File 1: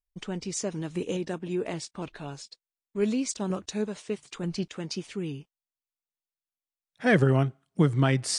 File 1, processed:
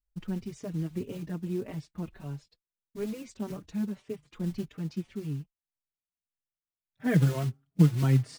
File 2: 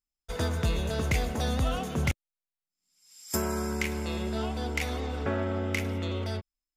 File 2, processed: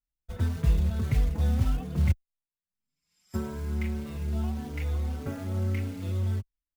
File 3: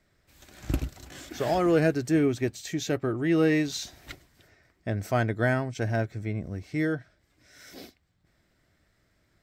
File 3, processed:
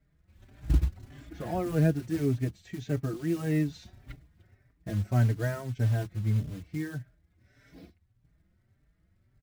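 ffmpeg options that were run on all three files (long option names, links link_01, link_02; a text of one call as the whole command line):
ffmpeg -i in.wav -filter_complex "[0:a]bass=frequency=250:gain=14,treble=frequency=4000:gain=-13,acrusher=bits=6:mode=log:mix=0:aa=0.000001,asplit=2[link_01][link_02];[link_02]adelay=4.6,afreqshift=1.7[link_03];[link_01][link_03]amix=inputs=2:normalize=1,volume=-6.5dB" out.wav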